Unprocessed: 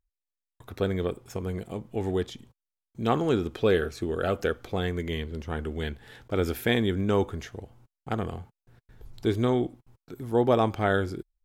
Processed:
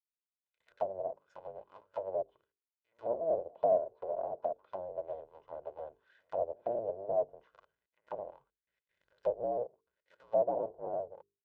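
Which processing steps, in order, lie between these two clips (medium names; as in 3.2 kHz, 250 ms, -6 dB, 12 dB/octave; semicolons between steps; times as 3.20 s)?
cycle switcher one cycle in 2, inverted; comb 2 ms, depth 49%; low-pass that closes with the level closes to 620 Hz, closed at -22.5 dBFS; pre-echo 141 ms -22 dB; auto-wah 700–2300 Hz, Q 5.4, down, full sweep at -26.5 dBFS; high-order bell 1.4 kHz -9.5 dB; hum notches 50/100/150/200/250/300/350/400/450 Hz; upward expansion 1.5:1, over -51 dBFS; trim +6.5 dB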